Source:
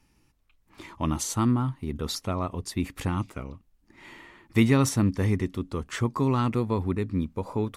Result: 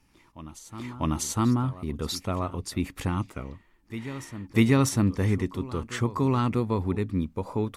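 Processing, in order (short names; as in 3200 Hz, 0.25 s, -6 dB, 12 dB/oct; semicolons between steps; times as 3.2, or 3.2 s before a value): reverse echo 0.645 s -15.5 dB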